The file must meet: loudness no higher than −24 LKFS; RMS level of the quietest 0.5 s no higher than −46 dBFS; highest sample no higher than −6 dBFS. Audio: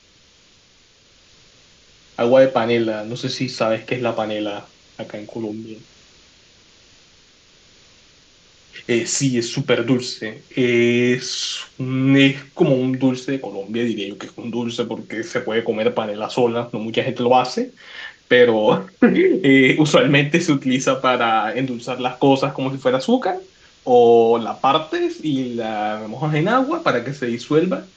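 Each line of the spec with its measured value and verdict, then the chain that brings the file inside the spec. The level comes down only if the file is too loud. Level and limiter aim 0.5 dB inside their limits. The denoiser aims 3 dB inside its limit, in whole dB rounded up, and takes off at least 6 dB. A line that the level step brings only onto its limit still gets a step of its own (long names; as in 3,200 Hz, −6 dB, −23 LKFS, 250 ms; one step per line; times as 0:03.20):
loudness −18.5 LKFS: out of spec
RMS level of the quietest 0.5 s −53 dBFS: in spec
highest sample −2.5 dBFS: out of spec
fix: level −6 dB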